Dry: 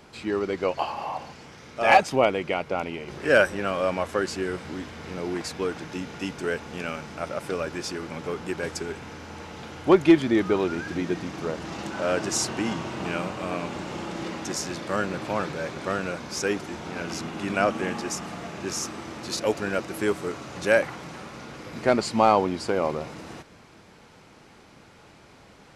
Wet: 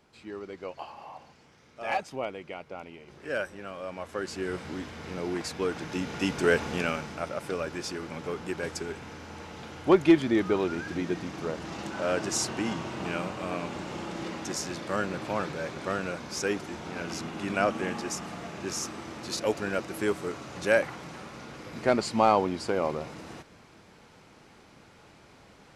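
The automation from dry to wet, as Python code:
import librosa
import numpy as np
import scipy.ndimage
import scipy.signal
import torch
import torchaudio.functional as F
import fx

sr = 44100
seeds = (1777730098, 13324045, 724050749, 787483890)

y = fx.gain(x, sr, db=fx.line((3.86, -13.0), (4.57, -2.0), (5.57, -2.0), (6.62, 6.0), (7.32, -3.0)))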